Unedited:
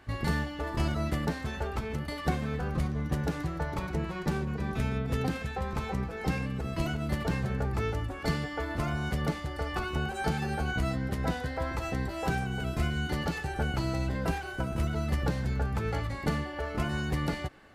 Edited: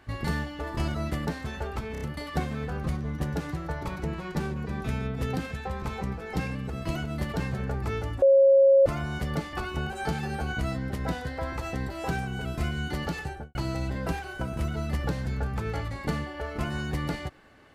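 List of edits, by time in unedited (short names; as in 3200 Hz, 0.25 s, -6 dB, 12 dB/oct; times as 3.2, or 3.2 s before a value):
1.92 stutter 0.03 s, 4 plays
8.13–8.77 bleep 545 Hz -14 dBFS
9.44–9.72 cut
13.42–13.74 studio fade out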